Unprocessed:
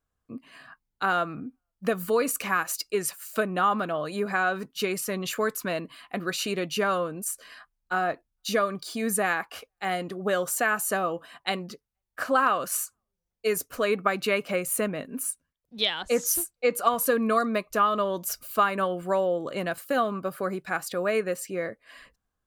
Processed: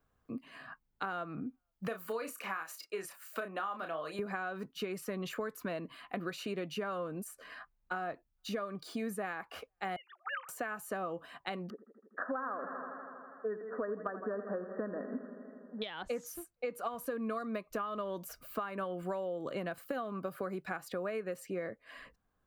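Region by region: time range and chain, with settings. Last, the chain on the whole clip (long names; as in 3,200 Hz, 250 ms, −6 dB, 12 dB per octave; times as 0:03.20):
0:01.87–0:04.19: high-pass filter 760 Hz 6 dB per octave + double-tracking delay 31 ms −7 dB
0:09.96–0:10.49: three sine waves on the formant tracks + Chebyshev high-pass filter 810 Hz, order 5 + high-shelf EQ 3,000 Hz +11.5 dB
0:11.70–0:15.82: linear-phase brick-wall band-pass 180–1,900 Hz + feedback echo with a swinging delay time 81 ms, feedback 76%, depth 55 cents, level −14 dB
whole clip: downward compressor, threshold −30 dBFS; parametric band 8,700 Hz −10.5 dB 2.6 octaves; multiband upward and downward compressor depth 40%; level −3.5 dB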